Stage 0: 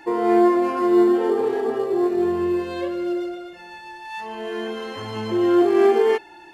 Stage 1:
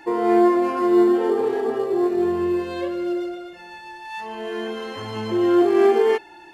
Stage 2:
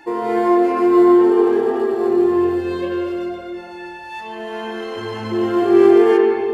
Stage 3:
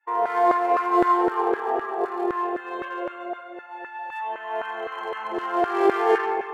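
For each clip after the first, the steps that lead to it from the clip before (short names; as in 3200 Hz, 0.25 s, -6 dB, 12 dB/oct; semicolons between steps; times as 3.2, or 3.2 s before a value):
nothing audible
reverb RT60 2.3 s, pre-delay 70 ms, DRR 0 dB
Wiener smoothing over 9 samples; LFO high-pass saw down 3.9 Hz 550–1500 Hz; expander -32 dBFS; gain -2.5 dB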